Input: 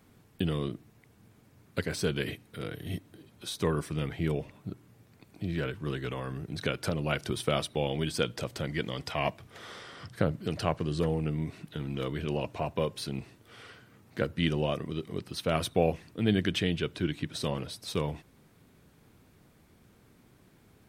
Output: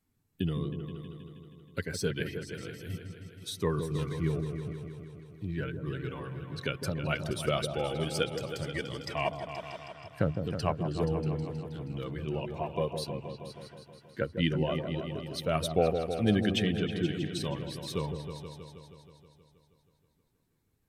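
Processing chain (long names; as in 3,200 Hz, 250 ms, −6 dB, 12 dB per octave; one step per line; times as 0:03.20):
spectral dynamics exaggerated over time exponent 1.5
floating-point word with a short mantissa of 8 bits
on a send: echo whose low-pass opens from repeat to repeat 159 ms, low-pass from 750 Hz, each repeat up 2 octaves, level −6 dB
on the sum: level +1.5 dB
SBC 192 kbit/s 32,000 Hz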